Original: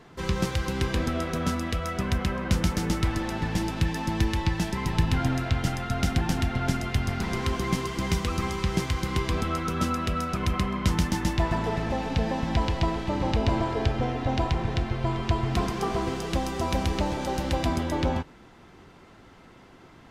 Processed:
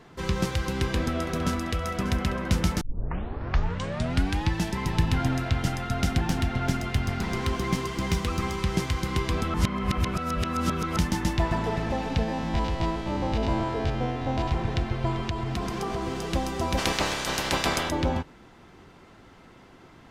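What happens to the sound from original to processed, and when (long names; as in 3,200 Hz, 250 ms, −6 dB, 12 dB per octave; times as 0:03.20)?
0:00.65–0:01.77: delay throw 590 ms, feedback 75%, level −13.5 dB
0:02.81: tape start 1.69 s
0:06.18–0:08.70: phase distortion by the signal itself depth 0.064 ms
0:09.54–0:10.97: reverse
0:12.23–0:14.52: spectrum averaged block by block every 50 ms
0:15.29–0:16.26: downward compressor 3 to 1, threshold −26 dBFS
0:16.77–0:17.89: ceiling on every frequency bin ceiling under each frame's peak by 22 dB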